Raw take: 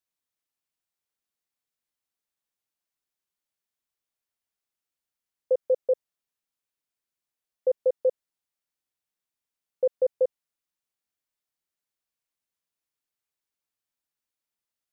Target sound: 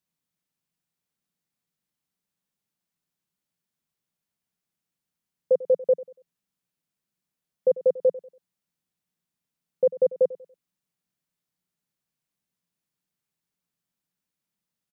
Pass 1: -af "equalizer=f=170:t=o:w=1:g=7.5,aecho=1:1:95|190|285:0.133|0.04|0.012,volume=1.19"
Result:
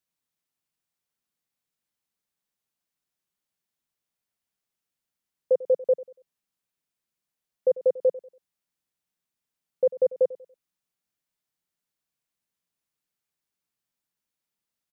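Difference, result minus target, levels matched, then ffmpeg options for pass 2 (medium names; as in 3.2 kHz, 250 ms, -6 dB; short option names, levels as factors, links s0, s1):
125 Hz band -7.0 dB
-af "equalizer=f=170:t=o:w=1:g=17,aecho=1:1:95|190|285:0.133|0.04|0.012,volume=1.19"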